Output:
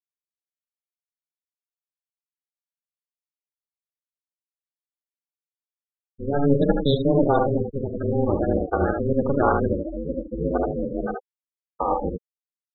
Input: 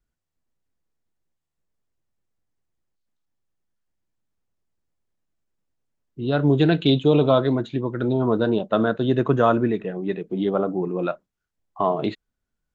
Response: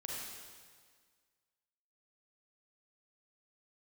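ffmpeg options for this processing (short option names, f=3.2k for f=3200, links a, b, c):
-af "aecho=1:1:49|77:0.398|0.631,aeval=exprs='val(0)*sin(2*PI*140*n/s)':c=same,afftfilt=real='re*gte(hypot(re,im),0.112)':imag='im*gte(hypot(re,im),0.112)':win_size=1024:overlap=0.75"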